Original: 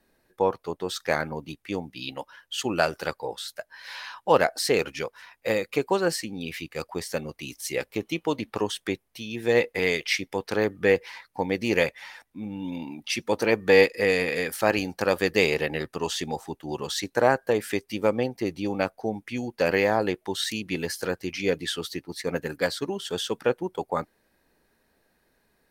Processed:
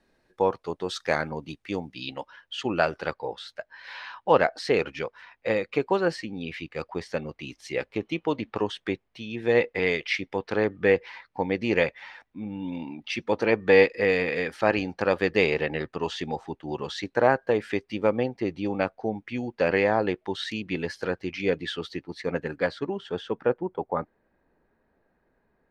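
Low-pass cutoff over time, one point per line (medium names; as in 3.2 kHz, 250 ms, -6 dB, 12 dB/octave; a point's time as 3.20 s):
1.91 s 6.3 kHz
2.59 s 3.3 kHz
22.27 s 3.3 kHz
23.55 s 1.5 kHz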